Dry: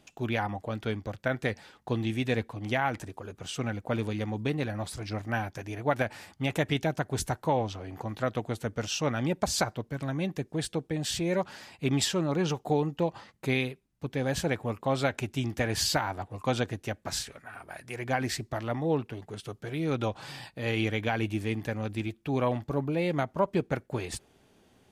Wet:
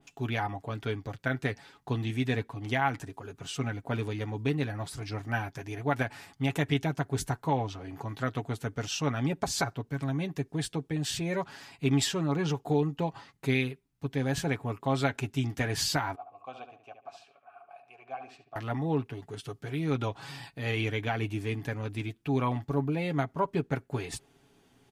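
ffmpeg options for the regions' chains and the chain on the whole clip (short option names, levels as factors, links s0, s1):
-filter_complex "[0:a]asettb=1/sr,asplit=3[s0][s1][s2];[s0]atrim=end=16.154[s3];[s1]atrim=start=16.15:end=18.56,asetpts=PTS-STARTPTS,afade=t=in:d=0.004:c=qsin,afade=t=out:st=2.406:d=0.004:c=qsin,asplit=3[s4][s5][s6];[s4]bandpass=f=730:t=q:w=8,volume=1[s7];[s5]bandpass=f=1090:t=q:w=8,volume=0.501[s8];[s6]bandpass=f=2440:t=q:w=8,volume=0.355[s9];[s7][s8][s9]amix=inputs=3:normalize=0,asplit=2[s10][s11];[s11]adelay=72,lowpass=f=2400:p=1,volume=0.398,asplit=2[s12][s13];[s13]adelay=72,lowpass=f=2400:p=1,volume=0.33,asplit=2[s14][s15];[s15]adelay=72,lowpass=f=2400:p=1,volume=0.33,asplit=2[s16][s17];[s17]adelay=72,lowpass=f=2400:p=1,volume=0.33[s18];[s10][s12][s14][s16][s18]amix=inputs=5:normalize=0,atrim=end_sample=106281[s19];[s2]atrim=start=18.556[s20];[s3][s19]acrossfade=d=0.004:c1=hsin:c2=qsin[s21];[s21][s20]acrossfade=d=0.004:c1=qsin:c2=hsin,equalizer=f=560:t=o:w=0.25:g=-7.5,aecho=1:1:7.2:0.52,adynamicequalizer=threshold=0.00708:dfrequency=2400:dqfactor=0.7:tfrequency=2400:tqfactor=0.7:attack=5:release=100:ratio=0.375:range=1.5:mode=cutabove:tftype=highshelf,volume=0.841"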